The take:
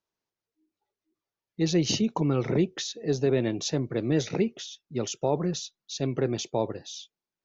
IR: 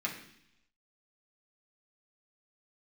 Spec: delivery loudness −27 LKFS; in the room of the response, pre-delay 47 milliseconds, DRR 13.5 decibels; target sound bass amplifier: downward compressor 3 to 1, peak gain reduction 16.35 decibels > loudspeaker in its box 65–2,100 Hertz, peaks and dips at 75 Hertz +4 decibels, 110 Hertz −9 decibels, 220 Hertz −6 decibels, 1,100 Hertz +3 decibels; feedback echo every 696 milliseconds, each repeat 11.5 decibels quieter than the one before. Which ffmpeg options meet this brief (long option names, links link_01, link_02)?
-filter_complex "[0:a]aecho=1:1:696|1392|2088:0.266|0.0718|0.0194,asplit=2[link_01][link_02];[1:a]atrim=start_sample=2205,adelay=47[link_03];[link_02][link_03]afir=irnorm=-1:irlink=0,volume=-18dB[link_04];[link_01][link_04]amix=inputs=2:normalize=0,acompressor=threshold=-41dB:ratio=3,highpass=frequency=65:width=0.5412,highpass=frequency=65:width=1.3066,equalizer=frequency=75:width_type=q:width=4:gain=4,equalizer=frequency=110:width_type=q:width=4:gain=-9,equalizer=frequency=220:width_type=q:width=4:gain=-6,equalizer=frequency=1100:width_type=q:width=4:gain=3,lowpass=frequency=2100:width=0.5412,lowpass=frequency=2100:width=1.3066,volume=16dB"